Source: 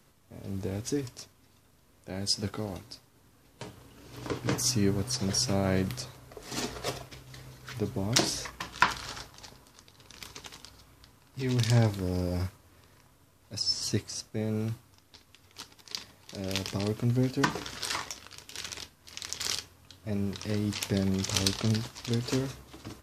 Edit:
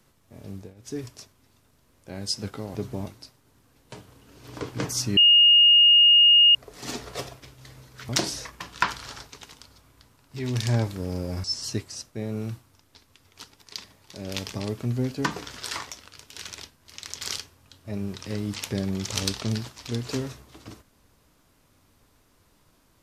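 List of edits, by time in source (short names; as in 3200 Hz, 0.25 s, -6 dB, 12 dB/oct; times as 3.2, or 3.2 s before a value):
0.47–1.03 dip -20 dB, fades 0.27 s
4.86–6.24 bleep 2850 Hz -12 dBFS
7.78–8.09 move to 2.75
9.29–10.32 cut
12.47–13.63 cut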